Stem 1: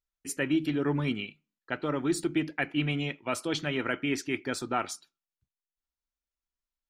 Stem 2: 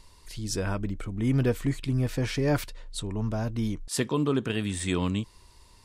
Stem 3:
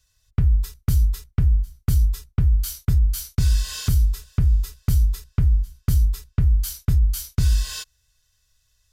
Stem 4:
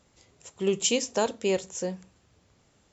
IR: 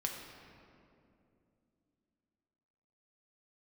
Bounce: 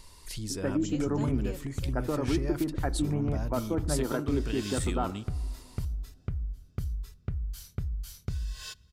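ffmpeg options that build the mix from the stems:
-filter_complex "[0:a]lowpass=f=1200:w=0.5412,lowpass=f=1200:w=1.3066,acompressor=threshold=0.0355:ratio=6,adelay=250,volume=1.33,asplit=2[s0][s1];[s1]volume=0.15[s2];[1:a]highshelf=f=7800:g=7,acompressor=threshold=0.02:ratio=12,volume=1.19[s3];[2:a]highshelf=f=6100:g=-8.5,acompressor=threshold=0.0501:ratio=6,adelay=900,volume=0.531,asplit=2[s4][s5];[s5]volume=0.1[s6];[3:a]volume=0.119[s7];[4:a]atrim=start_sample=2205[s8];[s2][s6]amix=inputs=2:normalize=0[s9];[s9][s8]afir=irnorm=-1:irlink=0[s10];[s0][s3][s4][s7][s10]amix=inputs=5:normalize=0"

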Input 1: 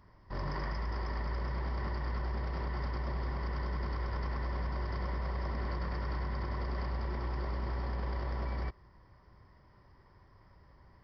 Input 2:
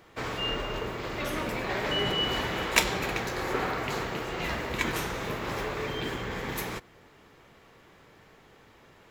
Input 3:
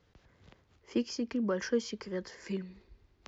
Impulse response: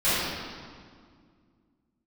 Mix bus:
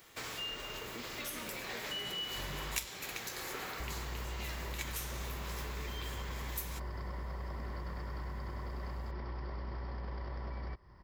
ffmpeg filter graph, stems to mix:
-filter_complex "[0:a]adelay=2050,volume=1.33,asplit=3[s0][s1][s2];[s0]atrim=end=2.85,asetpts=PTS-STARTPTS,afade=t=out:st=2.846:d=0.004:c=hsin[s3];[s1]atrim=start=2.85:end=3.8,asetpts=PTS-STARTPTS,volume=0[s4];[s2]atrim=start=3.8,asetpts=PTS-STARTPTS,afade=t=in:d=0.004:c=hsin[s5];[s3][s4][s5]concat=n=3:v=0:a=1[s6];[1:a]crystalizer=i=6.5:c=0,volume=0.355[s7];[2:a]volume=0.178[s8];[s6][s7][s8]amix=inputs=3:normalize=0,acompressor=threshold=0.00794:ratio=2.5"

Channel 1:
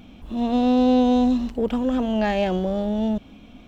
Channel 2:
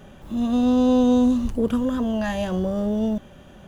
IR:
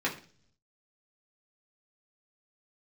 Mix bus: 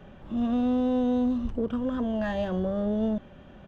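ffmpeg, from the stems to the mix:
-filter_complex "[0:a]volume=9.44,asoftclip=hard,volume=0.106,volume=0.126[s0];[1:a]lowpass=2900,volume=-1,adelay=0.5,volume=0.708[s1];[s0][s1]amix=inputs=2:normalize=0,alimiter=limit=0.112:level=0:latency=1:release=496"

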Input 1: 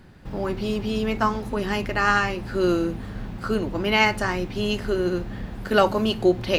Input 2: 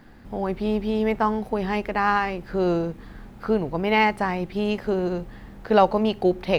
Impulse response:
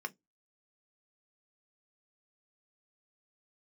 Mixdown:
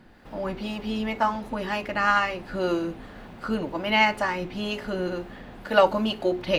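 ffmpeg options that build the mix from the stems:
-filter_complex "[0:a]bass=f=250:g=-14,treble=f=4000:g=-7,bandreject=f=60:t=h:w=6,bandreject=f=120:t=h:w=6,bandreject=f=180:t=h:w=6,bandreject=f=240:t=h:w=6,bandreject=f=300:t=h:w=6,bandreject=f=360:t=h:w=6,bandreject=f=420:t=h:w=6,volume=1,asplit=2[s0][s1];[s1]volume=0.224[s2];[1:a]acrossover=split=410[s3][s4];[s3]aeval=exprs='val(0)*(1-0.7/2+0.7/2*cos(2*PI*2*n/s))':c=same[s5];[s4]aeval=exprs='val(0)*(1-0.7/2-0.7/2*cos(2*PI*2*n/s))':c=same[s6];[s5][s6]amix=inputs=2:normalize=0,volume=0.708[s7];[2:a]atrim=start_sample=2205[s8];[s2][s8]afir=irnorm=-1:irlink=0[s9];[s0][s7][s9]amix=inputs=3:normalize=0"

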